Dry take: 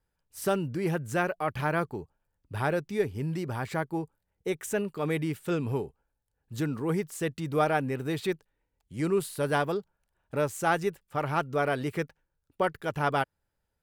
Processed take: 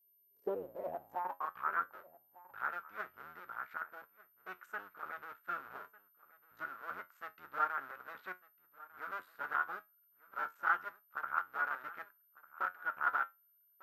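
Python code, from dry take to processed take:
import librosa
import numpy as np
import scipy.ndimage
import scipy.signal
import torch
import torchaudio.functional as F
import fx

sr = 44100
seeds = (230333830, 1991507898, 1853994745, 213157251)

y = fx.cycle_switch(x, sr, every=2, mode='muted')
y = fx.dynamic_eq(y, sr, hz=1100.0, q=0.94, threshold_db=-42.0, ratio=4.0, max_db=3)
y = fx.filter_sweep_bandpass(y, sr, from_hz=390.0, to_hz=1400.0, start_s=0.3, end_s=1.75, q=7.7)
y = y + 10.0 ** (-70.0 / 20.0) * np.sin(2.0 * np.pi * 13000.0 * np.arange(len(y)) / sr)
y = fx.high_shelf(y, sr, hz=5900.0, db=-5.0)
y = fx.comb_fb(y, sr, f0_hz=91.0, decay_s=0.19, harmonics='all', damping=0.0, mix_pct=60)
y = y + 10.0 ** (-20.5 / 20.0) * np.pad(y, (int(1199 * sr / 1000.0), 0))[:len(y)]
y = F.gain(torch.from_numpy(y), 7.0).numpy()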